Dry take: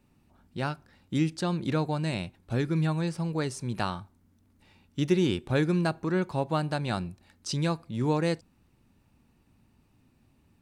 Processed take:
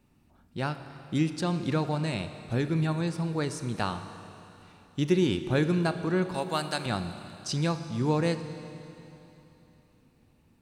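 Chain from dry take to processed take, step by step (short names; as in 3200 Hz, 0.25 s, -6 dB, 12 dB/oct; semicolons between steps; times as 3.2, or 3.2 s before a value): 6.34–6.86 tilt +3.5 dB/oct; Schroeder reverb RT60 3.3 s, combs from 27 ms, DRR 9.5 dB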